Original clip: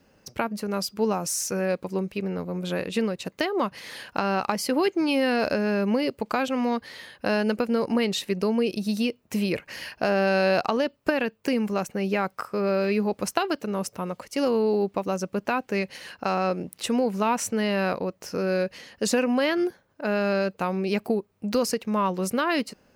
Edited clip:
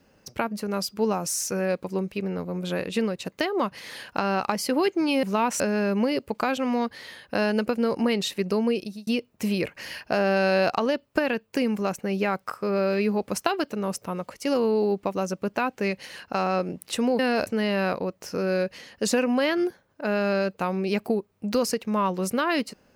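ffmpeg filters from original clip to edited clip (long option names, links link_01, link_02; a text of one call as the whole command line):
ffmpeg -i in.wav -filter_complex "[0:a]asplit=6[link_01][link_02][link_03][link_04][link_05][link_06];[link_01]atrim=end=5.232[link_07];[link_02]atrim=start=17.098:end=17.472[link_08];[link_03]atrim=start=5.508:end=8.98,asetpts=PTS-STARTPTS,afade=type=out:start_time=3.102:duration=0.37[link_09];[link_04]atrim=start=8.98:end=17.102,asetpts=PTS-STARTPTS,afade=type=in:duration=0.004:curve=hsin[link_10];[link_05]atrim=start=5.228:end=5.512[link_11];[link_06]atrim=start=17.468[link_12];[link_07][link_08]acrossfade=duration=0.004:curve1=hsin:curve2=hsin[link_13];[link_09][link_10]concat=n=2:v=0:a=1[link_14];[link_13][link_14]acrossfade=duration=0.004:curve1=hsin:curve2=hsin[link_15];[link_15][link_11]acrossfade=duration=0.004:curve1=hsin:curve2=hsin[link_16];[link_16][link_12]acrossfade=duration=0.004:curve1=hsin:curve2=hsin" out.wav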